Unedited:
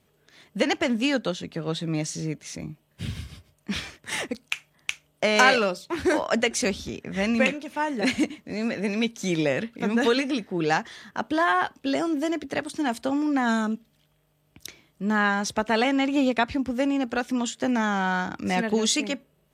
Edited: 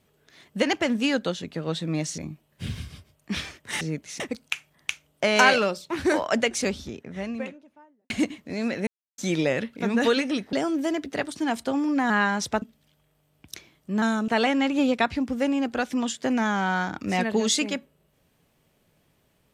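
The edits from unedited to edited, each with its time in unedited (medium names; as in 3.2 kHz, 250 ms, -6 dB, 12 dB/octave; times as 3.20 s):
2.18–2.57 s: move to 4.20 s
6.32–8.10 s: studio fade out
8.87–9.18 s: mute
10.53–11.91 s: delete
13.48–13.74 s: swap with 15.14–15.66 s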